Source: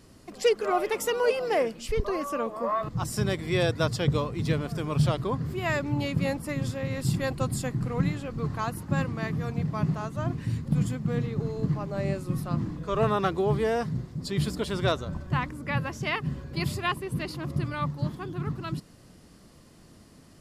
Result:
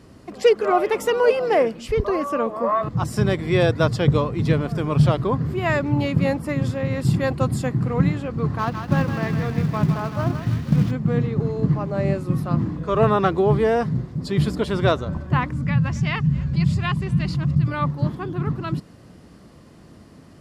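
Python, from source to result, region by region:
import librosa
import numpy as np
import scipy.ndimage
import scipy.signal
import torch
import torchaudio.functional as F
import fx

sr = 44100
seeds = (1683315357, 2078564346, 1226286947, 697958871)

y = fx.chain(x, sr, fx.cvsd(bps=32000),
    fx.quant_companded(bits=6),
    fx.echo_thinned(ms=159, feedback_pct=68, hz=1200.0, wet_db=-4.5), at=(8.58, 10.91))
y = fx.chain(y, sr, fx.curve_eq(hz=(110.0, 170.0, 340.0, 1500.0, 7300.0, 13000.0), db=(0, 4, -17, -10, -4, -19)),
    fx.echo_single(ms=271, db=-23.0),
    fx.env_flatten(amount_pct=50), at=(15.52, 17.68))
y = scipy.signal.sosfilt(scipy.signal.butter(2, 49.0, 'highpass', fs=sr, output='sos'), y)
y = fx.high_shelf(y, sr, hz=3700.0, db=-11.0)
y = F.gain(torch.from_numpy(y), 7.5).numpy()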